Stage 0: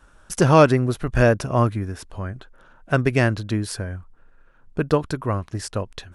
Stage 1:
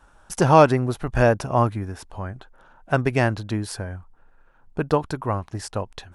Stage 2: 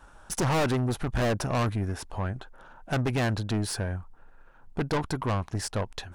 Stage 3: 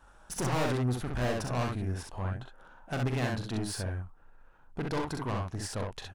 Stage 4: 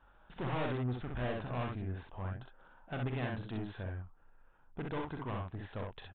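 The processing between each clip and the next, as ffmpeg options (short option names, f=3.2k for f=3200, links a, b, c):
-af "equalizer=f=830:w=2.5:g=8.5,volume=-2.5dB"
-af "aeval=exprs='(tanh(20*val(0)+0.3)-tanh(0.3))/20':c=same,volume=3dB"
-af "aecho=1:1:41|64:0.398|0.708,volume=-6.5dB"
-af "aresample=8000,aresample=44100,volume=-6dB"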